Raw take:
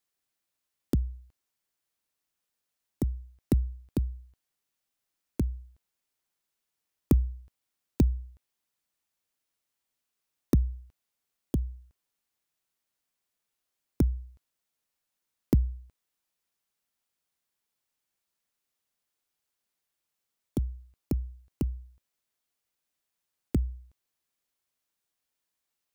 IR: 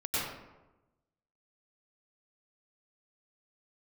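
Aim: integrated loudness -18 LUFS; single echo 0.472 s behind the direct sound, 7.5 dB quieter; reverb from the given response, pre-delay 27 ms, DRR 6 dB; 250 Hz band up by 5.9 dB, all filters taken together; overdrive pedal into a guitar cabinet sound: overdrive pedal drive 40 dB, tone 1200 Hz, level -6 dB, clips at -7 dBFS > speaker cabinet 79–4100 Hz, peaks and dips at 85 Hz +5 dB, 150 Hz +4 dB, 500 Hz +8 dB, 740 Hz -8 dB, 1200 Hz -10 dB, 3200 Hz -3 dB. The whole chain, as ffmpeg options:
-filter_complex "[0:a]equalizer=f=250:t=o:g=6.5,aecho=1:1:472:0.422,asplit=2[a][b];[1:a]atrim=start_sample=2205,adelay=27[c];[b][c]afir=irnorm=-1:irlink=0,volume=-13.5dB[d];[a][d]amix=inputs=2:normalize=0,asplit=2[e][f];[f]highpass=f=720:p=1,volume=40dB,asoftclip=type=tanh:threshold=-7dB[g];[e][g]amix=inputs=2:normalize=0,lowpass=f=1.2k:p=1,volume=-6dB,highpass=79,equalizer=f=85:t=q:w=4:g=5,equalizer=f=150:t=q:w=4:g=4,equalizer=f=500:t=q:w=4:g=8,equalizer=f=740:t=q:w=4:g=-8,equalizer=f=1.2k:t=q:w=4:g=-10,equalizer=f=3.2k:t=q:w=4:g=-3,lowpass=f=4.1k:w=0.5412,lowpass=f=4.1k:w=1.3066,volume=0.5dB"

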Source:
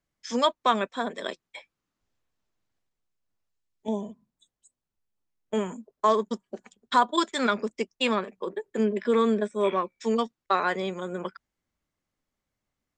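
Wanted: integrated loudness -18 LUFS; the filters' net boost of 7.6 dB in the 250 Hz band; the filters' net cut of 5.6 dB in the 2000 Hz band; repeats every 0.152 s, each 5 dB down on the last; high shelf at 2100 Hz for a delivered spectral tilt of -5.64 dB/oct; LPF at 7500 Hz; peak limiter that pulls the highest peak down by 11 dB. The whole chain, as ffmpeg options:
-af "lowpass=7.5k,equalizer=f=250:t=o:g=9,equalizer=f=2k:t=o:g=-6,highshelf=f=2.1k:g=-4.5,alimiter=limit=-20.5dB:level=0:latency=1,aecho=1:1:152|304|456|608|760|912|1064:0.562|0.315|0.176|0.0988|0.0553|0.031|0.0173,volume=12dB"

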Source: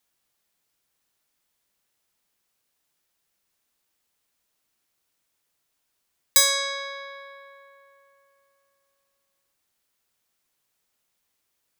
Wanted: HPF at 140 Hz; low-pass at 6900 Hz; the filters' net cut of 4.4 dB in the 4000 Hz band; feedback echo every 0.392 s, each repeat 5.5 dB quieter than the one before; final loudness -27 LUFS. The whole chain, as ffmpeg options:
-af "highpass=140,lowpass=6.9k,equalizer=f=4k:t=o:g=-4.5,aecho=1:1:392|784|1176|1568|1960|2352|2744:0.531|0.281|0.149|0.079|0.0419|0.0222|0.0118,volume=0.5dB"

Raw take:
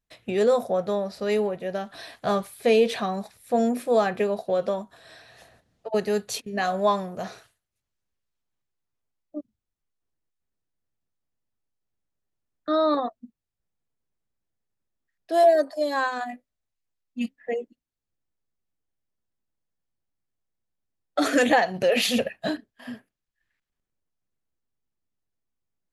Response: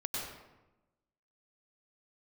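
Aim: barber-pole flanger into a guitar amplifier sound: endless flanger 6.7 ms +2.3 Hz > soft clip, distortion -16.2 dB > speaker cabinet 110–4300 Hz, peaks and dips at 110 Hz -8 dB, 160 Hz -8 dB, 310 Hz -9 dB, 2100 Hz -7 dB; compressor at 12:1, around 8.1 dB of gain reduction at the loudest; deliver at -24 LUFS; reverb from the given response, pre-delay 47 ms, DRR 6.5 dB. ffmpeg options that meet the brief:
-filter_complex "[0:a]acompressor=threshold=-22dB:ratio=12,asplit=2[a][b];[1:a]atrim=start_sample=2205,adelay=47[c];[b][c]afir=irnorm=-1:irlink=0,volume=-9.5dB[d];[a][d]amix=inputs=2:normalize=0,asplit=2[e][f];[f]adelay=6.7,afreqshift=2.3[g];[e][g]amix=inputs=2:normalize=1,asoftclip=threshold=-24dB,highpass=110,equalizer=f=110:t=q:w=4:g=-8,equalizer=f=160:t=q:w=4:g=-8,equalizer=f=310:t=q:w=4:g=-9,equalizer=f=2.1k:t=q:w=4:g=-7,lowpass=f=4.3k:w=0.5412,lowpass=f=4.3k:w=1.3066,volume=10.5dB"

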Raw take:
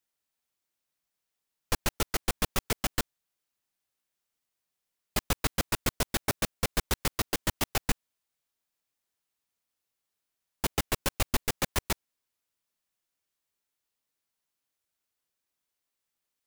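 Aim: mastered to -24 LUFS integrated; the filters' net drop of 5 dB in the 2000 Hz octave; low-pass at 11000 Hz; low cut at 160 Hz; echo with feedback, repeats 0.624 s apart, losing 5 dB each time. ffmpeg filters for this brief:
-af "highpass=160,lowpass=11k,equalizer=f=2k:t=o:g=-6.5,aecho=1:1:624|1248|1872|2496|3120|3744|4368:0.562|0.315|0.176|0.0988|0.0553|0.031|0.0173,volume=10.5dB"

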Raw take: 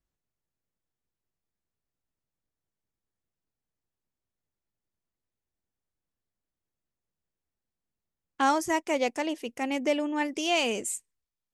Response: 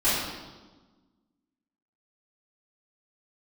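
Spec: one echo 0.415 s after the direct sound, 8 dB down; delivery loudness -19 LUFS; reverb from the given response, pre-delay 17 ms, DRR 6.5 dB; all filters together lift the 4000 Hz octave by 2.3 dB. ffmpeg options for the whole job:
-filter_complex "[0:a]equalizer=f=4k:t=o:g=3.5,aecho=1:1:415:0.398,asplit=2[a][b];[1:a]atrim=start_sample=2205,adelay=17[c];[b][c]afir=irnorm=-1:irlink=0,volume=-21dB[d];[a][d]amix=inputs=2:normalize=0,volume=7dB"

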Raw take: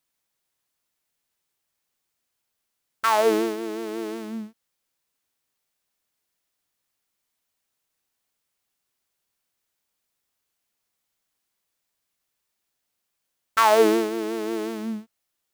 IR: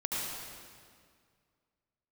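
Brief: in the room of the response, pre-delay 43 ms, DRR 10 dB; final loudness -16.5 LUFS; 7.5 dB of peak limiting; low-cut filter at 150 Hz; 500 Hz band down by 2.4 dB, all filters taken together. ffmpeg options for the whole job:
-filter_complex "[0:a]highpass=150,equalizer=f=500:t=o:g=-3,alimiter=limit=-13.5dB:level=0:latency=1,asplit=2[a][b];[1:a]atrim=start_sample=2205,adelay=43[c];[b][c]afir=irnorm=-1:irlink=0,volume=-16dB[d];[a][d]amix=inputs=2:normalize=0,volume=11.5dB"

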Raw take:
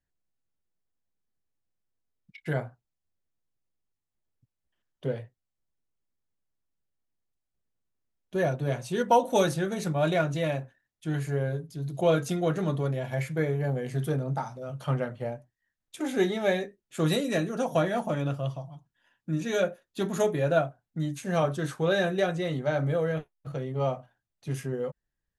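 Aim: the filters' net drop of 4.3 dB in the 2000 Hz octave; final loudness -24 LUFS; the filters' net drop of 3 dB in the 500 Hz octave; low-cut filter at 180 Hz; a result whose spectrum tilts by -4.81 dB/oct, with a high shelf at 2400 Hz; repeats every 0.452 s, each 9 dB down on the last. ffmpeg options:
-af "highpass=180,equalizer=f=500:t=o:g=-3.5,equalizer=f=2k:t=o:g=-9,highshelf=f=2.4k:g=7,aecho=1:1:452|904|1356|1808:0.355|0.124|0.0435|0.0152,volume=7.5dB"

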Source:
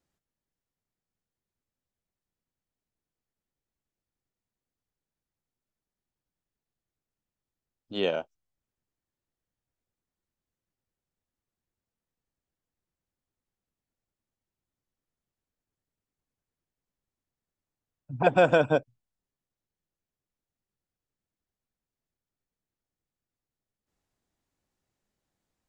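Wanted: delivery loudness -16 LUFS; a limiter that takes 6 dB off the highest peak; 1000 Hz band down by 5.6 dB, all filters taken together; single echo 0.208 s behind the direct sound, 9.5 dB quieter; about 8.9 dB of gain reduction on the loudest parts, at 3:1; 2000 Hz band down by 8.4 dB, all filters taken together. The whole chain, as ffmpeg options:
-af "equalizer=f=1k:t=o:g=-8,equalizer=f=2k:t=o:g=-9,acompressor=threshold=-30dB:ratio=3,alimiter=level_in=1dB:limit=-24dB:level=0:latency=1,volume=-1dB,aecho=1:1:208:0.335,volume=22dB"

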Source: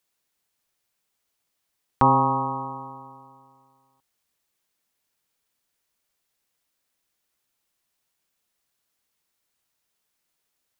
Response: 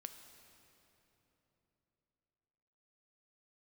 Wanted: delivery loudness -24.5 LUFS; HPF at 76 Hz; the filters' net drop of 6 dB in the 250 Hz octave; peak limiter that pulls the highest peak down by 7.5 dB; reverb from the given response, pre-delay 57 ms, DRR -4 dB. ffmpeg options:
-filter_complex "[0:a]highpass=76,equalizer=f=250:t=o:g=-6.5,alimiter=limit=-13.5dB:level=0:latency=1,asplit=2[a][b];[1:a]atrim=start_sample=2205,adelay=57[c];[b][c]afir=irnorm=-1:irlink=0,volume=9dB[d];[a][d]amix=inputs=2:normalize=0,volume=-4dB"

